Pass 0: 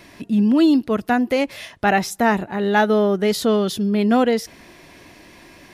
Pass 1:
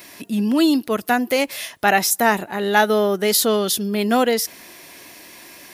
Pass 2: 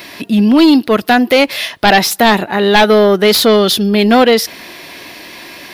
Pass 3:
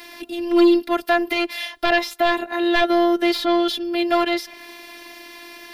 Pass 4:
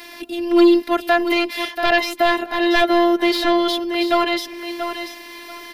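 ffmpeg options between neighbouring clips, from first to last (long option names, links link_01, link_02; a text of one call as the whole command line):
ffmpeg -i in.wav -af "aemphasis=mode=production:type=bsi,volume=1.5dB" out.wav
ffmpeg -i in.wav -af "aeval=exprs='0.841*sin(PI/2*2.82*val(0)/0.841)':channel_layout=same,highshelf=frequency=5500:width_type=q:width=1.5:gain=-8,volume=-2dB" out.wav
ffmpeg -i in.wav -filter_complex "[0:a]acrossover=split=340|600|3900[link_01][link_02][link_03][link_04];[link_04]acompressor=threshold=-29dB:ratio=6[link_05];[link_01][link_02][link_03][link_05]amix=inputs=4:normalize=0,afftfilt=real='hypot(re,im)*cos(PI*b)':imag='0':win_size=512:overlap=0.75,volume=-5dB" out.wav
ffmpeg -i in.wav -af "aecho=1:1:684|1368|2052:0.376|0.0827|0.0182,volume=2dB" out.wav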